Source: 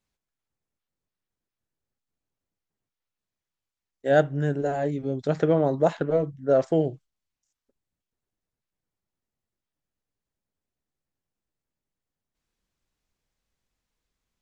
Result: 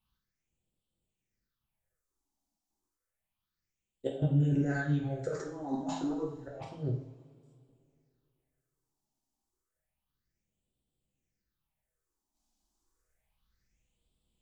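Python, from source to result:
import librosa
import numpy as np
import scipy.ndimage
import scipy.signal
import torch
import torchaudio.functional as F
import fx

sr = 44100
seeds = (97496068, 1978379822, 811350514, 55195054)

y = fx.over_compress(x, sr, threshold_db=-27.0, ratio=-0.5)
y = fx.phaser_stages(y, sr, stages=6, low_hz=120.0, high_hz=1700.0, hz=0.3, feedback_pct=45)
y = fx.rev_double_slope(y, sr, seeds[0], early_s=0.53, late_s=2.6, knee_db=-19, drr_db=-2.0)
y = y * librosa.db_to_amplitude(-5.0)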